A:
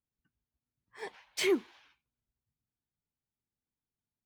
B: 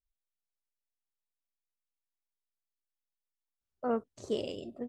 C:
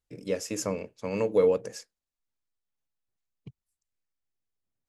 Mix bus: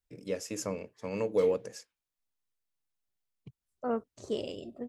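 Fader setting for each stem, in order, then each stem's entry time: -20.0, -0.5, -4.5 dB; 0.00, 0.00, 0.00 s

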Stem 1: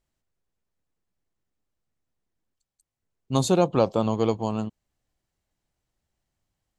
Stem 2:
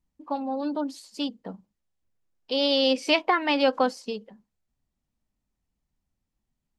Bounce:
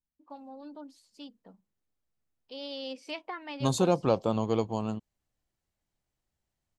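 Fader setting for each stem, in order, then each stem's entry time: -4.5, -16.5 dB; 0.30, 0.00 s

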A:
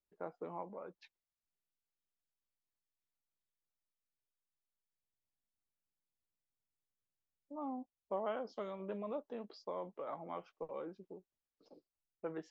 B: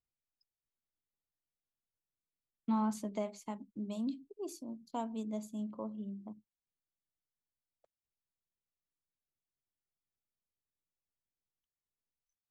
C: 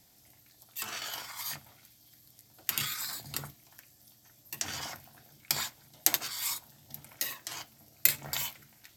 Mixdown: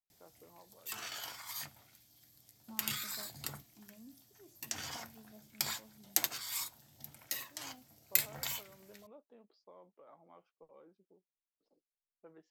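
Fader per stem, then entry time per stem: -15.5, -19.0, -5.0 dB; 0.00, 0.00, 0.10 s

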